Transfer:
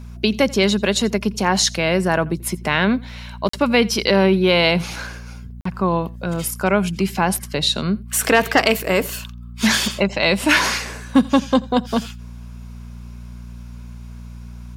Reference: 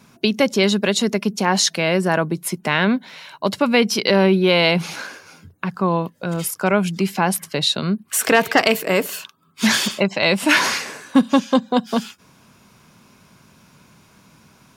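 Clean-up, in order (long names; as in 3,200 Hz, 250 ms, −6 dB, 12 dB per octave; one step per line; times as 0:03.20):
hum removal 59.3 Hz, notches 4
repair the gap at 0:03.49/0:05.61, 44 ms
echo removal 86 ms −23.5 dB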